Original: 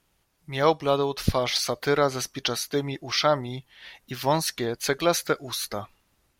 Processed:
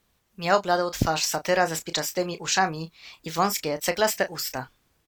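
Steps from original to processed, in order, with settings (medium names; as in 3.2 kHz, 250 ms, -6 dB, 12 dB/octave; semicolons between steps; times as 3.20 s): tape speed +26%; doubling 31 ms -11 dB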